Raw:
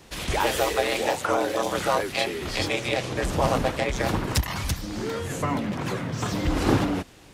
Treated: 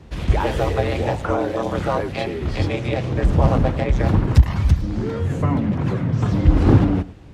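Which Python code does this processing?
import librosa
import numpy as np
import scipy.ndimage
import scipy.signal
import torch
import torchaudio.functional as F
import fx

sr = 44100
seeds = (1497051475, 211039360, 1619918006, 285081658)

p1 = fx.octave_divider(x, sr, octaves=2, level_db=-3.0, at=(0.54, 1.31))
p2 = scipy.signal.sosfilt(scipy.signal.butter(2, 51.0, 'highpass', fs=sr, output='sos'), p1)
p3 = fx.riaa(p2, sr, side='playback')
y = p3 + fx.echo_single(p3, sr, ms=109, db=-18.5, dry=0)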